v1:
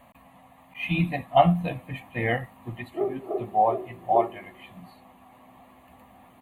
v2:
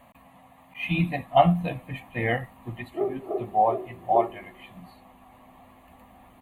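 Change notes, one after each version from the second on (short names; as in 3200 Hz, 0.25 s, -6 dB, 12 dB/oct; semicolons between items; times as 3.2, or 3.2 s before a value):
background: remove HPF 100 Hz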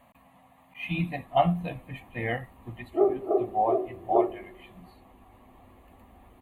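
speech -4.5 dB; background +5.0 dB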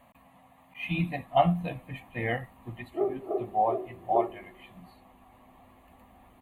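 background -6.0 dB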